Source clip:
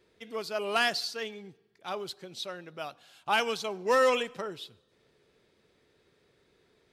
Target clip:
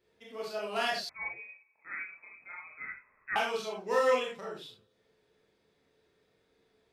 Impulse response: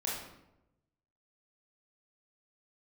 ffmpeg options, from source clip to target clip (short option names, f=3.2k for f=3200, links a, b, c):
-filter_complex "[1:a]atrim=start_sample=2205,afade=t=out:st=0.16:d=0.01,atrim=end_sample=7497[a];[0:a][a]afir=irnorm=-1:irlink=0,asettb=1/sr,asplit=3[b][c][d];[b]atrim=end=1.094[e];[c]atrim=start=1.09:end=3.36,asetpts=PTS-STARTPTS,afade=t=in:d=0.004:c=qsin,afade=t=out:st=2.266:d=0.004:c=qsin,lowpass=f=2.3k:t=q:w=0.5098,lowpass=f=2.3k:t=q:w=0.6013,lowpass=f=2.3k:t=q:w=0.9,lowpass=f=2.3k:t=q:w=2.563,afreqshift=-2700[f];[d]atrim=start=3.356[g];[e][f]acrossfade=d=0.004:c1=hsin:c2=qsin[h];[h][g]acrossfade=d=0.004:c1=qsin:c2=hsin,volume=-7.5dB"